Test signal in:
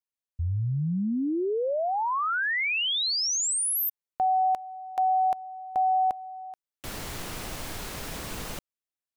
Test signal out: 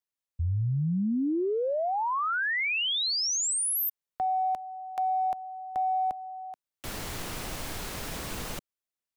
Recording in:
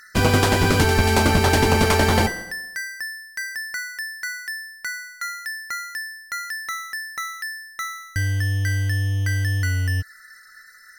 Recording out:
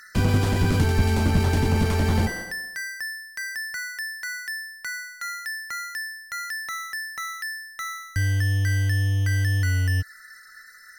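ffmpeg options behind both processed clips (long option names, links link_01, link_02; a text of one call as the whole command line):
ffmpeg -i in.wav -filter_complex "[0:a]acrossover=split=260[link_01][link_02];[link_02]acompressor=threshold=-25dB:ratio=6:attack=0.2:release=45:knee=2.83:detection=peak[link_03];[link_01][link_03]amix=inputs=2:normalize=0" out.wav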